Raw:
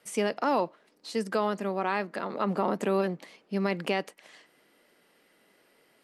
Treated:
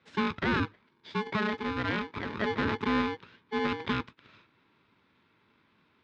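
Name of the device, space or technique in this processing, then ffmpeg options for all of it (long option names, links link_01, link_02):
ring modulator pedal into a guitar cabinet: -af "aeval=exprs='val(0)*sgn(sin(2*PI*640*n/s))':channel_layout=same,highpass=99,equalizer=frequency=100:width_type=q:width=4:gain=5,equalizer=frequency=240:width_type=q:width=4:gain=4,equalizer=frequency=760:width_type=q:width=4:gain=-7,equalizer=frequency=1200:width_type=q:width=4:gain=-6,equalizer=frequency=2700:width_type=q:width=4:gain=-6,lowpass=frequency=3500:width=0.5412,lowpass=frequency=3500:width=1.3066"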